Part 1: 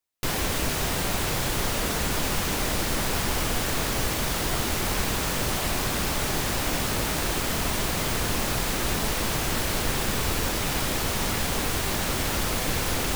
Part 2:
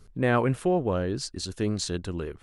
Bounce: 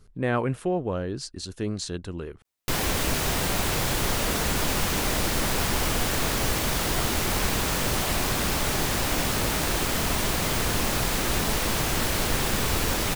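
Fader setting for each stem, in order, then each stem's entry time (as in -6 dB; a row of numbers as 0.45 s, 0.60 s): +1.0 dB, -2.0 dB; 2.45 s, 0.00 s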